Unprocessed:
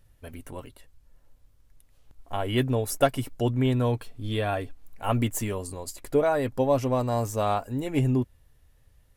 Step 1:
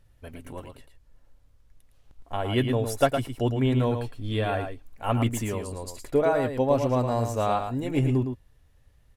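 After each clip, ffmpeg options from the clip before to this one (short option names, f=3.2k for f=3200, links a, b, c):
-filter_complex "[0:a]highshelf=f=9.7k:g=-9.5,asplit=2[a][b];[b]aecho=0:1:111:0.447[c];[a][c]amix=inputs=2:normalize=0"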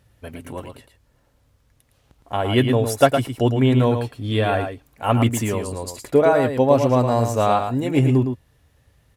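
-af "highpass=75,volume=7dB"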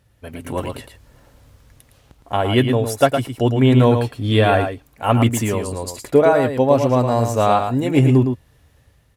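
-af "dynaudnorm=f=220:g=5:m=13dB,volume=-1dB"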